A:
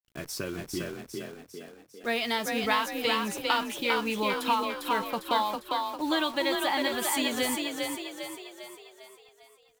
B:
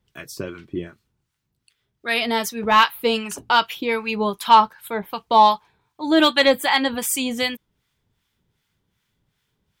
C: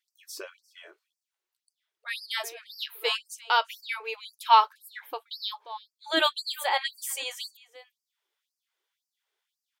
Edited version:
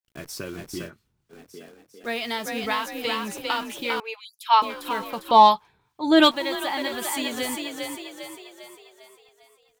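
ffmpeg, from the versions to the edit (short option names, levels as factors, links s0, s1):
-filter_complex "[1:a]asplit=2[s0][s1];[0:a]asplit=4[s2][s3][s4][s5];[s2]atrim=end=0.91[s6];[s0]atrim=start=0.85:end=1.35[s7];[s3]atrim=start=1.29:end=4.002[s8];[2:a]atrim=start=3.998:end=4.622[s9];[s4]atrim=start=4.618:end=5.312[s10];[s1]atrim=start=5.308:end=6.312[s11];[s5]atrim=start=6.308[s12];[s6][s7]acrossfade=d=0.06:c1=tri:c2=tri[s13];[s13][s8]acrossfade=d=0.06:c1=tri:c2=tri[s14];[s14][s9]acrossfade=d=0.004:c1=hsin:c2=hsin[s15];[s15][s10]acrossfade=d=0.004:c1=hsin:c2=hsin[s16];[s16][s11]acrossfade=d=0.004:c1=hsin:c2=hsin[s17];[s17][s12]acrossfade=d=0.004:c1=hsin:c2=hsin"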